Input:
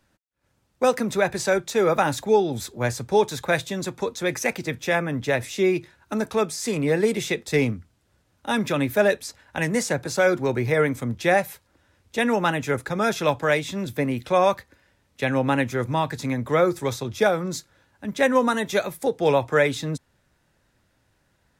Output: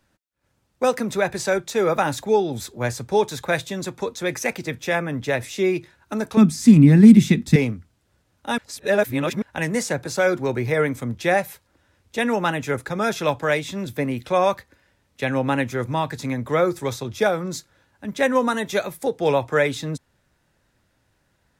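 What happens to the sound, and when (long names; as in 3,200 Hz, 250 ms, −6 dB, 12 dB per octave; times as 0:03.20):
0:06.37–0:07.56: low shelf with overshoot 330 Hz +12.5 dB, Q 3
0:08.58–0:09.42: reverse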